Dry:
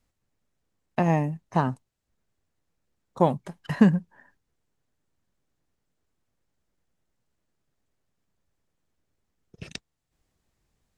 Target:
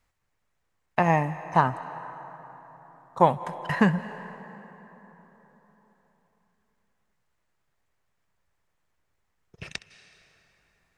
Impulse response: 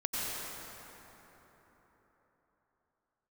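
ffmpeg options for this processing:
-filter_complex "[0:a]equalizer=f=250:t=o:w=1:g=-6,equalizer=f=1k:t=o:w=1:g=6,equalizer=f=2k:t=o:w=1:g=6,asplit=2[a][b];[1:a]atrim=start_sample=2205,lowshelf=f=300:g=-9.5,adelay=65[c];[b][c]afir=irnorm=-1:irlink=0,volume=-18dB[d];[a][d]amix=inputs=2:normalize=0"

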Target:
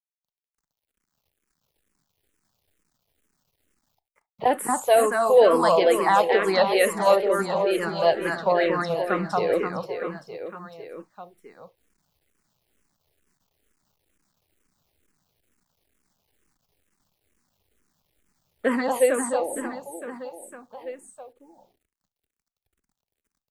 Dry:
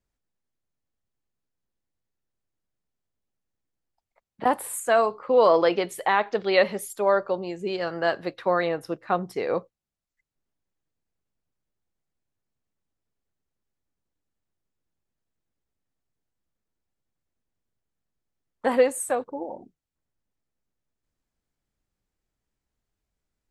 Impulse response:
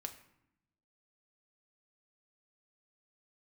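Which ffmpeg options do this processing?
-filter_complex "[0:a]aecho=1:1:230|529|917.7|1423|2080:0.631|0.398|0.251|0.158|0.1,acrusher=bits=11:mix=0:aa=0.000001,asplit=2[a][b];[1:a]atrim=start_sample=2205,atrim=end_sample=3528[c];[b][c]afir=irnorm=-1:irlink=0,volume=-0.5dB[d];[a][d]amix=inputs=2:normalize=0,asplit=2[e][f];[f]afreqshift=-2.2[g];[e][g]amix=inputs=2:normalize=1"

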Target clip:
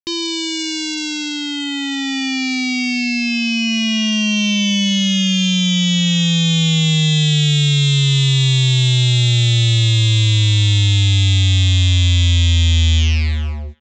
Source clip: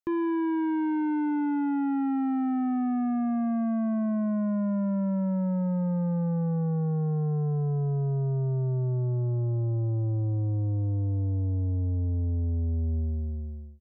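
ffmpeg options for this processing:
-filter_complex "[0:a]asubboost=boost=5.5:cutoff=240,aresample=16000,acrusher=bits=4:mix=0:aa=0.5,aresample=44100,aexciter=amount=14.1:drive=1.2:freq=2.2k,asplit=2[a][b];[b]adelay=380,highpass=300,lowpass=3.4k,asoftclip=type=hard:threshold=-18.5dB,volume=-27dB[c];[a][c]amix=inputs=2:normalize=0"

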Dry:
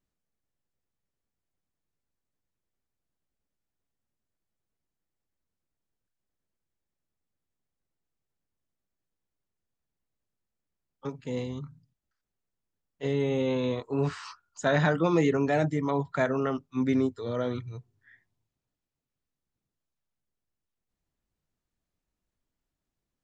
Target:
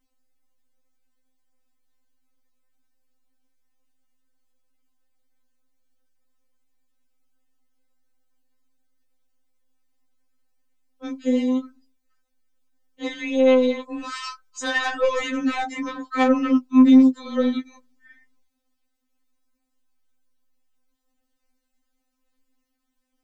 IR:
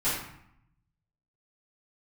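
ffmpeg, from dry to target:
-filter_complex "[0:a]acrossover=split=260[a][b];[a]acompressor=threshold=-39dB:ratio=6[c];[c][b]amix=inputs=2:normalize=0,aeval=exprs='0.237*(cos(1*acos(clip(val(0)/0.237,-1,1)))-cos(1*PI/2))+0.0422*(cos(5*acos(clip(val(0)/0.237,-1,1)))-cos(5*PI/2))+0.00168*(cos(8*acos(clip(val(0)/0.237,-1,1)))-cos(8*PI/2))':c=same,asettb=1/sr,asplit=3[d][e][f];[d]atrim=end=13.084[g];[e]atrim=start=13.08:end=15.38,asetpts=PTS-STARTPTS,afade=t=in:d=0.004:c=qsin,afade=t=out:st=2.296:d=0.004:c=qsin,equalizer=f=86:w=0.42:g=-13.5[h];[f]atrim=start=15.376[i];[g][h]acrossfade=d=0.004:c1=hsin:c2=qsin[j];[j][i]acrossfade=d=0.004:c1=qsin:c2=hsin,afftfilt=real='re*3.46*eq(mod(b,12),0)':imag='im*3.46*eq(mod(b,12),0)':win_size=2048:overlap=0.75,volume=6dB"

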